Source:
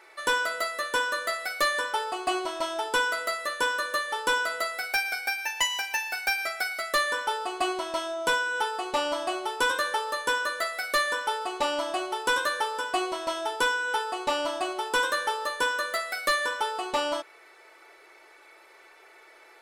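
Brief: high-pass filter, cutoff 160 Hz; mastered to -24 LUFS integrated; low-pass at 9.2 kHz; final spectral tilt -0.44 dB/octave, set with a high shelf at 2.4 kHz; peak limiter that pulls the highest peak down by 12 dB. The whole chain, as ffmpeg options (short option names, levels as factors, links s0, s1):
-af "highpass=160,lowpass=9200,highshelf=f=2400:g=-4,volume=3.76,alimiter=limit=0.141:level=0:latency=1"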